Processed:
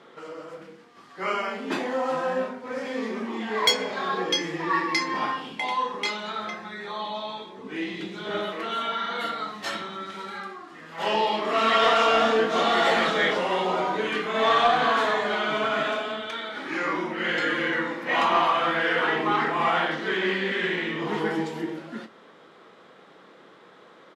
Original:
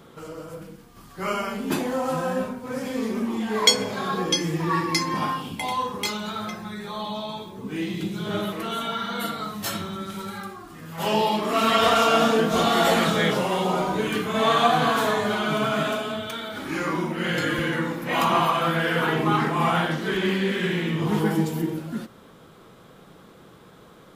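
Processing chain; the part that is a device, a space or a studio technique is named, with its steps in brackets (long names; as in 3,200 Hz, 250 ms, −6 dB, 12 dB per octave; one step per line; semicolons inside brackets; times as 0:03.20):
intercom (band-pass filter 330–4,600 Hz; parametric band 1,900 Hz +5.5 dB 0.28 octaves; soft clipping −11 dBFS, distortion −22 dB; double-tracking delay 27 ms −11 dB)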